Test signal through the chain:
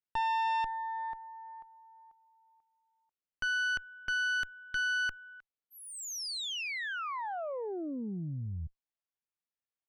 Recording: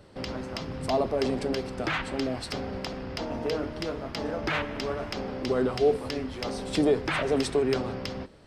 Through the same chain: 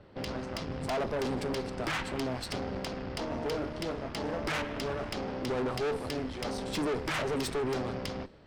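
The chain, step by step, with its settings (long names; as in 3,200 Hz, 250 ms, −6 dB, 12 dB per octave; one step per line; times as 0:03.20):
low-pass that shuts in the quiet parts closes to 2,900 Hz, open at −26.5 dBFS
tube saturation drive 31 dB, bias 0.75
level +2.5 dB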